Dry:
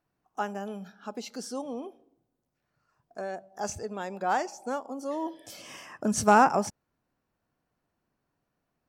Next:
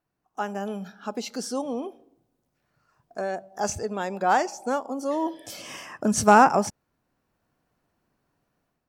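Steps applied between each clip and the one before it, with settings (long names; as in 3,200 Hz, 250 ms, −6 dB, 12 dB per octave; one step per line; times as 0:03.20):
automatic gain control gain up to 8 dB
level −2 dB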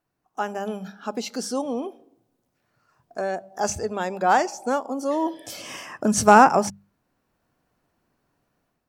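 mains-hum notches 50/100/150/200 Hz
level +2.5 dB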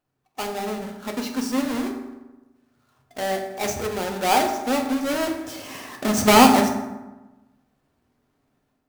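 each half-wave held at its own peak
convolution reverb RT60 1.1 s, pre-delay 4 ms, DRR 2 dB
level −6 dB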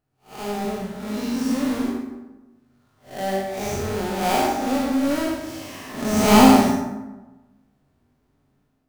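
spectrum smeared in time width 169 ms
low-shelf EQ 210 Hz +9 dB
chorus effect 1.7 Hz, delay 19 ms, depth 3.1 ms
level +4 dB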